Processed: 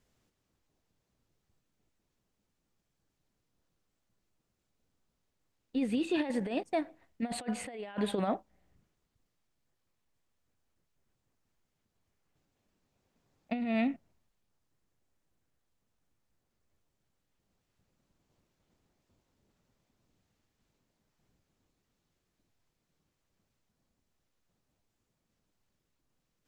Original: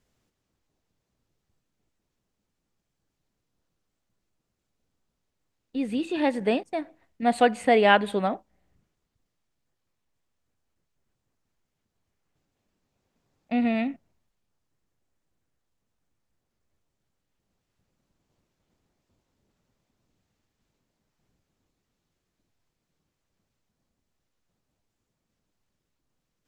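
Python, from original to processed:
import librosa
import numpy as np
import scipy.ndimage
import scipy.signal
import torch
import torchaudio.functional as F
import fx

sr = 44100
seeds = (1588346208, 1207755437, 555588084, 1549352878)

y = fx.over_compress(x, sr, threshold_db=-26.0, ratio=-0.5)
y = y * 10.0 ** (-5.0 / 20.0)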